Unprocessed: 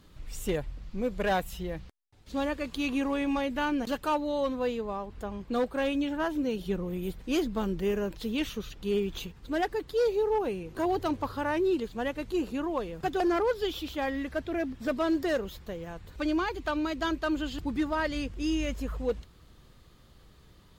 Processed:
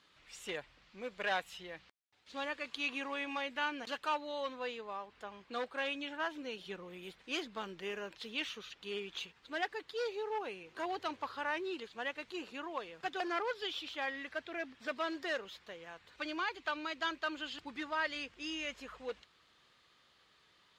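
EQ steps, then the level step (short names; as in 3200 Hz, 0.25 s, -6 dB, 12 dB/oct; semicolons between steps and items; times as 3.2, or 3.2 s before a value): LPF 2500 Hz 12 dB/oct; differentiator; +11.5 dB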